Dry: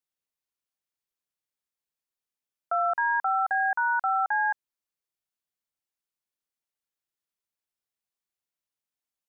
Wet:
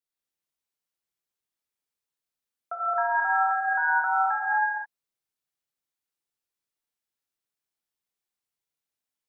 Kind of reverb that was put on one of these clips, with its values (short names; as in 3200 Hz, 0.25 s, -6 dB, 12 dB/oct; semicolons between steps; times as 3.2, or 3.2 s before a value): non-linear reverb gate 0.34 s flat, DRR -5.5 dB; gain -5.5 dB